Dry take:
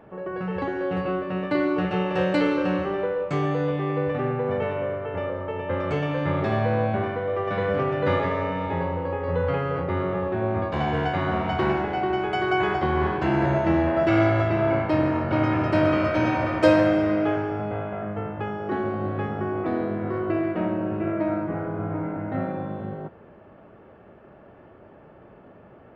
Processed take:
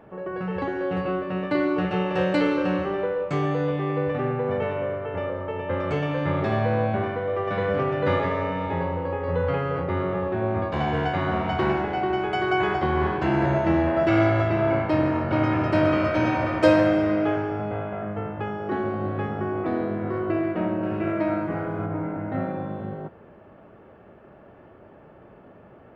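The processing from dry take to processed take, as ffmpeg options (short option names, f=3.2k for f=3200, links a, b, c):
-filter_complex "[0:a]asettb=1/sr,asplit=3[a][b][c];[a]atrim=end=20.834[d];[b]atrim=start=20.83:end=21.86,asetpts=PTS-STARTPTS,afade=t=in:d=0.004:c=qsin,afade=t=out:st=1.026:d=0.004:c=qsin,highshelf=f=2k:g=9[e];[c]atrim=start=21.856[f];[d][e]acrossfade=d=0.004:c1=hsin:c2=qsin[g];[g][f]acrossfade=d=0.004:c1=qsin:c2=hsin"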